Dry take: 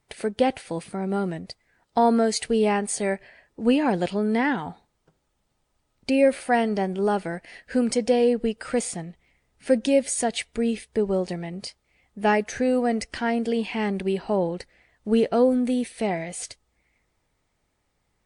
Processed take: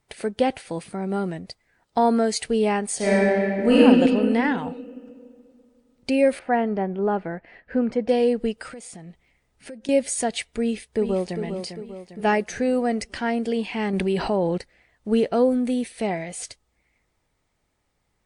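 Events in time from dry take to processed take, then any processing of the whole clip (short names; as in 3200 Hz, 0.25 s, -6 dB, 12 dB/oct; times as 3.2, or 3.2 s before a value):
2.96–3.76 reverb throw, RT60 2.5 s, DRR -8.5 dB
6.39–8.09 LPF 1800 Hz
8.67–9.89 compressor 5:1, threshold -37 dBFS
10.61–11.41 echo throw 0.4 s, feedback 50%, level -8 dB
13.93–14.58 fast leveller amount 70%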